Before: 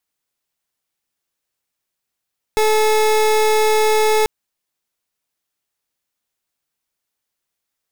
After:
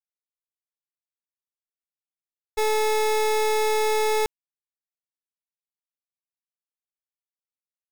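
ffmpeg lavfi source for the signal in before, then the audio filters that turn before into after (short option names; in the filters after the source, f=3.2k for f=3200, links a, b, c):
-f lavfi -i "aevalsrc='0.188*(2*lt(mod(432*t,1),0.29)-1)':d=1.69:s=44100"
-af "agate=range=-33dB:threshold=-11dB:ratio=3:detection=peak"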